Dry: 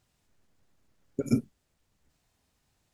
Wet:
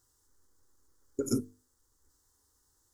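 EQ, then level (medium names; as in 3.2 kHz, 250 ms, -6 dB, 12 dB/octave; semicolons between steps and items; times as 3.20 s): resonant high shelf 4.8 kHz +6 dB, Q 1.5; hum notches 50/100/150/200/250/300/350/400/450 Hz; static phaser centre 660 Hz, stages 6; +1.5 dB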